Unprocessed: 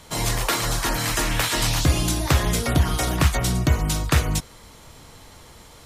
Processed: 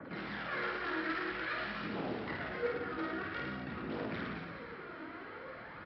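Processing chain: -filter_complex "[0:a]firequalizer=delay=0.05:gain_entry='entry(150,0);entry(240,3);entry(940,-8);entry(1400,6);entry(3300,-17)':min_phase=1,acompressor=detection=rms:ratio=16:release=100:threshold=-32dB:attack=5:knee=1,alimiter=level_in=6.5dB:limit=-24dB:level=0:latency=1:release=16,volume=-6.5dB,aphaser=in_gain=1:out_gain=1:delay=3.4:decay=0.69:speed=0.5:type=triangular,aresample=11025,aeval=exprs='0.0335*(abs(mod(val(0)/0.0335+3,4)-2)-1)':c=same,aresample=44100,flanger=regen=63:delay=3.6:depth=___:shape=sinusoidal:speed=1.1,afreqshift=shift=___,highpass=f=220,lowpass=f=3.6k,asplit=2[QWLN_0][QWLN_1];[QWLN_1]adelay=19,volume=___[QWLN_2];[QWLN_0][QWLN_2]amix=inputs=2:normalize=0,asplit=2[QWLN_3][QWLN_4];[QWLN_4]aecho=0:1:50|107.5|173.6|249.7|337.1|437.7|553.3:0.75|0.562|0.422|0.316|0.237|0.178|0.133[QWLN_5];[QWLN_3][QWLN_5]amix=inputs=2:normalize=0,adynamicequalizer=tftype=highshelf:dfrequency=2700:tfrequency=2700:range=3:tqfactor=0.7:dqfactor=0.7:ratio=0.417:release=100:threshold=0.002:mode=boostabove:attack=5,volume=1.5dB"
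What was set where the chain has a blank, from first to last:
8.6, 14, -11.5dB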